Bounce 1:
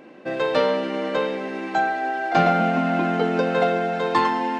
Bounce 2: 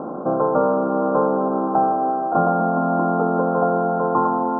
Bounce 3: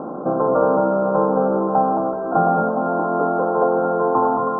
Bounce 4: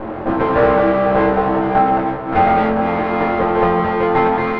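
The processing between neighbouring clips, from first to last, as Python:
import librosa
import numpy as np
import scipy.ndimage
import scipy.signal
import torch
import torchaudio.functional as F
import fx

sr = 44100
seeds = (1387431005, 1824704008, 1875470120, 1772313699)

y1 = fx.bin_compress(x, sr, power=0.6)
y1 = scipy.signal.sosfilt(scipy.signal.cheby1(8, 1.0, 1400.0, 'lowpass', fs=sr, output='sos'), y1)
y1 = fx.rider(y1, sr, range_db=5, speed_s=0.5)
y2 = y1 + 10.0 ** (-3.0 / 20.0) * np.pad(y1, (int(220 * sr / 1000.0), 0))[:len(y1)]
y3 = fx.lower_of_two(y2, sr, delay_ms=9.0)
y3 = fx.air_absorb(y3, sr, metres=330.0)
y3 = fx.doubler(y3, sr, ms=22.0, db=-2.5)
y3 = y3 * 10.0 ** (4.5 / 20.0)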